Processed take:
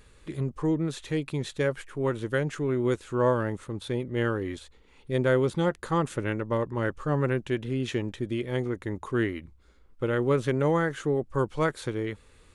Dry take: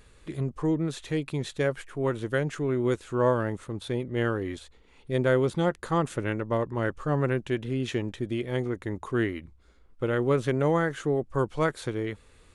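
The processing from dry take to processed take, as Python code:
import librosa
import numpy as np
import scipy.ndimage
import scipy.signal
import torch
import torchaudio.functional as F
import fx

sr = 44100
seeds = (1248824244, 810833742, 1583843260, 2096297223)

y = fx.notch(x, sr, hz=690.0, q=12.0)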